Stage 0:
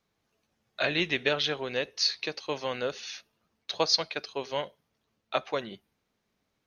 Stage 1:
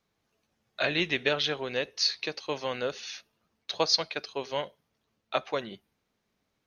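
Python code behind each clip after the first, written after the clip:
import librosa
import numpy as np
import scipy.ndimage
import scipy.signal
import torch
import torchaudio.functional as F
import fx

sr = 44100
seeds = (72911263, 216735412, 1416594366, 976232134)

y = x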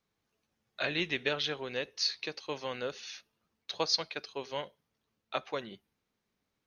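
y = fx.peak_eq(x, sr, hz=650.0, db=-3.0, octaves=0.38)
y = y * librosa.db_to_amplitude(-4.5)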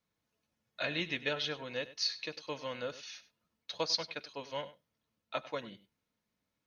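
y = fx.notch_comb(x, sr, f0_hz=390.0)
y = y + 10.0 ** (-16.5 / 20.0) * np.pad(y, (int(98 * sr / 1000.0), 0))[:len(y)]
y = y * librosa.db_to_amplitude(-1.5)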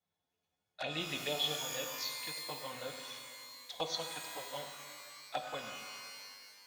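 y = fx.env_flanger(x, sr, rest_ms=11.3, full_db=-32.0)
y = fx.small_body(y, sr, hz=(760.0, 3400.0), ring_ms=40, db=15)
y = fx.rev_shimmer(y, sr, seeds[0], rt60_s=1.9, semitones=12, shimmer_db=-2, drr_db=5.5)
y = y * librosa.db_to_amplitude(-3.5)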